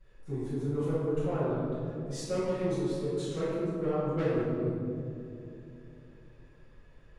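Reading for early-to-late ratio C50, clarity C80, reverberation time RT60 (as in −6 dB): −4.5 dB, −1.5 dB, 2.8 s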